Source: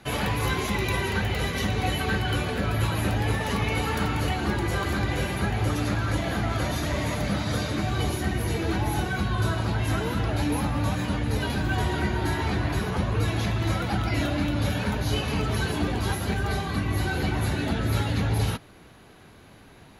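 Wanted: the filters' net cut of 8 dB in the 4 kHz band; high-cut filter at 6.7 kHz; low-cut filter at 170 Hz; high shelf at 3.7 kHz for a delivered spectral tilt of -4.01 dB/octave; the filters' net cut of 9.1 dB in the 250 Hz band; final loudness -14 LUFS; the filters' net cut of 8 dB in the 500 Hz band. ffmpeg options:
-af "highpass=170,lowpass=6700,equalizer=f=250:t=o:g=-8.5,equalizer=f=500:t=o:g=-7.5,highshelf=f=3700:g=-4.5,equalizer=f=4000:t=o:g=-7.5,volume=9.44"

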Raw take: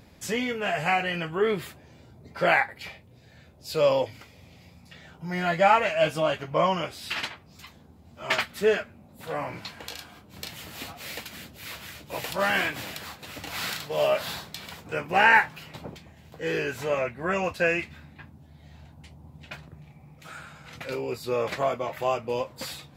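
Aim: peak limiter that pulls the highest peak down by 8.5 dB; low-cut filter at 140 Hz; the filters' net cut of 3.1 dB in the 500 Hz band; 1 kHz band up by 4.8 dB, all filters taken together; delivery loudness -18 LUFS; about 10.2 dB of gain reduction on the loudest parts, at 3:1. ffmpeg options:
-af "highpass=140,equalizer=f=500:t=o:g=-7,equalizer=f=1000:t=o:g=8.5,acompressor=threshold=0.0631:ratio=3,volume=5.31,alimiter=limit=0.531:level=0:latency=1"

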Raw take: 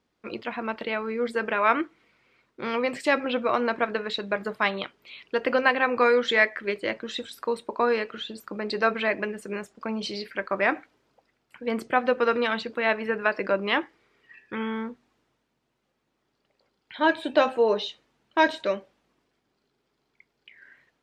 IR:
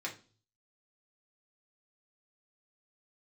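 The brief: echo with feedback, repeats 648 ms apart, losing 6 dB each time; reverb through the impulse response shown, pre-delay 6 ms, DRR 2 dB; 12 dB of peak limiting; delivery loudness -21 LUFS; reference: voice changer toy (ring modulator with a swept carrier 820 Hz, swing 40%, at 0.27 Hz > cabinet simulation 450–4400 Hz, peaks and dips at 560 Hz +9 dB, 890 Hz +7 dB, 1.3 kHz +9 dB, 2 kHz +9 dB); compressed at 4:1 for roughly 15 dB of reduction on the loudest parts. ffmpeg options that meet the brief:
-filter_complex "[0:a]acompressor=threshold=0.02:ratio=4,alimiter=level_in=2.11:limit=0.0631:level=0:latency=1,volume=0.473,aecho=1:1:648|1296|1944|2592|3240|3888:0.501|0.251|0.125|0.0626|0.0313|0.0157,asplit=2[s0][s1];[1:a]atrim=start_sample=2205,adelay=6[s2];[s1][s2]afir=irnorm=-1:irlink=0,volume=0.631[s3];[s0][s3]amix=inputs=2:normalize=0,aeval=exprs='val(0)*sin(2*PI*820*n/s+820*0.4/0.27*sin(2*PI*0.27*n/s))':c=same,highpass=450,equalizer=f=560:t=q:w=4:g=9,equalizer=f=890:t=q:w=4:g=7,equalizer=f=1300:t=q:w=4:g=9,equalizer=f=2000:t=q:w=4:g=9,lowpass=f=4400:w=0.5412,lowpass=f=4400:w=1.3066,volume=5.62"

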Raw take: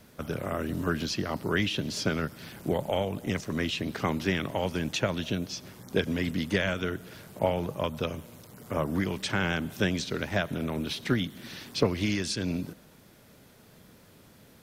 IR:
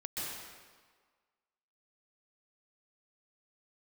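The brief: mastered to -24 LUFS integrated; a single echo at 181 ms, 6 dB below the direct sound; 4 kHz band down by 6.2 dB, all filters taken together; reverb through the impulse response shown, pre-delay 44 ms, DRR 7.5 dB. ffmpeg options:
-filter_complex "[0:a]equalizer=f=4000:t=o:g=-8.5,aecho=1:1:181:0.501,asplit=2[s0][s1];[1:a]atrim=start_sample=2205,adelay=44[s2];[s1][s2]afir=irnorm=-1:irlink=0,volume=0.316[s3];[s0][s3]amix=inputs=2:normalize=0,volume=1.88"

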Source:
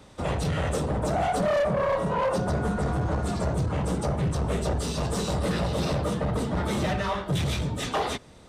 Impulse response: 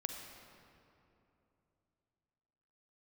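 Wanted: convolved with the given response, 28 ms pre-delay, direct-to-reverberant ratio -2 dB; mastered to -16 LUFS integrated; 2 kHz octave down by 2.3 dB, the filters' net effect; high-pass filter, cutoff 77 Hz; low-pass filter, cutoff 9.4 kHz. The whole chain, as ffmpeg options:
-filter_complex "[0:a]highpass=77,lowpass=9400,equalizer=f=2000:t=o:g=-3,asplit=2[s0][s1];[1:a]atrim=start_sample=2205,adelay=28[s2];[s1][s2]afir=irnorm=-1:irlink=0,volume=1.26[s3];[s0][s3]amix=inputs=2:normalize=0,volume=2.24"

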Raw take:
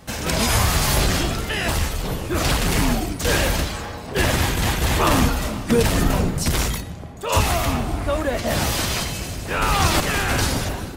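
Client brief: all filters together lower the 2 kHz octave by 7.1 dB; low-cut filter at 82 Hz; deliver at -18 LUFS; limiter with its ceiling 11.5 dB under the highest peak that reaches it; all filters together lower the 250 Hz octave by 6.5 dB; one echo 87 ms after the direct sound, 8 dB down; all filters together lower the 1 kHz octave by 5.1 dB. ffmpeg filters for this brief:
-af "highpass=82,equalizer=f=250:t=o:g=-8.5,equalizer=f=1000:t=o:g=-4,equalizer=f=2000:t=o:g=-8,alimiter=limit=0.1:level=0:latency=1,aecho=1:1:87:0.398,volume=3.35"

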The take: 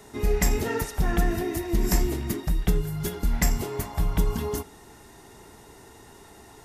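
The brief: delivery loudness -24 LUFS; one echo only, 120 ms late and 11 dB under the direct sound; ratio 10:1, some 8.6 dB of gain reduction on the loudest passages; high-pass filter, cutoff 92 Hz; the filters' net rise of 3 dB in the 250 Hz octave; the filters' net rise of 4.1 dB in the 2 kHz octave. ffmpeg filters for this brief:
-af "highpass=92,equalizer=f=250:t=o:g=4.5,equalizer=f=2000:t=o:g=4.5,acompressor=threshold=0.0447:ratio=10,aecho=1:1:120:0.282,volume=2.51"

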